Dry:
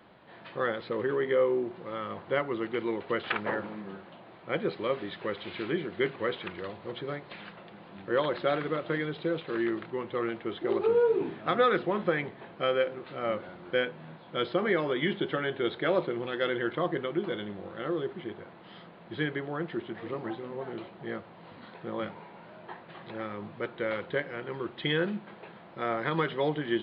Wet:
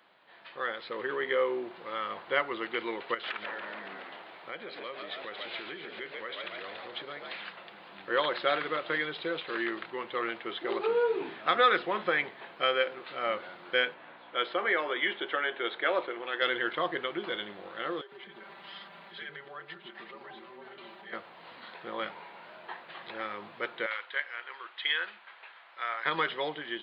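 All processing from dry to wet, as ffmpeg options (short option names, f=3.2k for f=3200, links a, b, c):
-filter_complex "[0:a]asettb=1/sr,asplit=3[a][b][c];[a]atrim=end=3.144[d];[b]atrim=start=3.14:end=7.37,asetpts=PTS-STARTPTS,afade=t=in:d=0.004:c=qsin,afade=t=out:st=4.226:d=0.004:c=qsin,asplit=8[e][f][g][h][i][j][k][l];[f]adelay=141,afreqshift=66,volume=-9dB[m];[g]adelay=282,afreqshift=132,volume=-13.6dB[n];[h]adelay=423,afreqshift=198,volume=-18.2dB[o];[i]adelay=564,afreqshift=264,volume=-22.7dB[p];[j]adelay=705,afreqshift=330,volume=-27.3dB[q];[k]adelay=846,afreqshift=396,volume=-31.9dB[r];[l]adelay=987,afreqshift=462,volume=-36.5dB[s];[e][m][n][o][p][q][r][s]amix=inputs=8:normalize=0,atrim=end_sample=186543,acompressor=threshold=-37dB:ratio=4:attack=3.2:release=140:knee=1:detection=peak[t];[c]atrim=start=7.366[u];[d][t]acrossfade=d=0.004:c1=hsin:c2=qsin[v];[v][u]acrossfade=d=0.004:c1=qsin:c2=hsin,asettb=1/sr,asplit=3[w][x][y];[w]atrim=end=13.944[z];[x]atrim=start=13.94:end=16.42,asetpts=PTS-STARTPTS,afade=t=in:d=0.004:c=qsin,afade=t=out:st=2.476:d=0.004:c=qsin,aeval=exprs='val(0)+0.00891*(sin(2*PI*60*n/s)+sin(2*PI*2*60*n/s)/2+sin(2*PI*3*60*n/s)/3+sin(2*PI*4*60*n/s)/4+sin(2*PI*5*60*n/s)/5)':c=same,highpass=330,lowpass=2.9k[aa];[y]atrim=start=16.416[ab];[z][aa]acrossfade=d=0.004:c1=hsin:c2=qsin[ac];[ac][ab]acrossfade=d=0.004:c1=qsin:c2=hsin,asettb=1/sr,asplit=3[ad][ae][af];[ad]atrim=end=18.014[ag];[ae]atrim=start=18.01:end=21.13,asetpts=PTS-STARTPTS,afade=t=in:d=0.004:c=qsin,afade=t=out:st=3.116:d=0.004:c=qsin,aecho=1:1:5.1:0.93,atrim=end_sample=137592,acompressor=threshold=-43dB:ratio=3:attack=3.2:release=140:knee=1:detection=peak,acrossover=split=410[ah][ai];[ah]adelay=110[aj];[aj][ai]amix=inputs=2:normalize=0,atrim=end_sample=137592[ak];[af]atrim=start=21.126[al];[ag][ak]acrossfade=d=0.004:c1=hsin:c2=qsin[am];[am][al]acrossfade=d=0.004:c1=qsin:c2=hsin,asettb=1/sr,asplit=3[an][ao][ap];[an]atrim=end=23.864[aq];[ao]atrim=start=23.86:end=26.06,asetpts=PTS-STARTPTS,afade=t=in:d=0.004:c=qsin,afade=t=out:st=2.196:d=0.004:c=qsin,highpass=1.2k,aemphasis=mode=reproduction:type=bsi[ar];[ap]atrim=start=26.056[as];[aq][ar]acrossfade=d=0.004:c1=hsin:c2=qsin[at];[at][as]acrossfade=d=0.004:c1=qsin:c2=hsin,highpass=f=1.5k:p=1,dynaudnorm=f=370:g=5:m=7dB"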